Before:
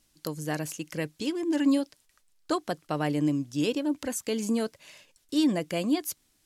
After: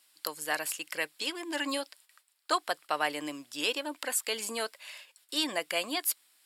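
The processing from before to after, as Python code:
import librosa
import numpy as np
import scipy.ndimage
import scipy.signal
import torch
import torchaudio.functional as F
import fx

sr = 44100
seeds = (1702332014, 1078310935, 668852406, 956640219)

y = scipy.signal.sosfilt(scipy.signal.butter(2, 910.0, 'highpass', fs=sr, output='sos'), x)
y = fx.peak_eq(y, sr, hz=6200.0, db=-14.0, octaves=0.23)
y = y * 10.0 ** (6.0 / 20.0)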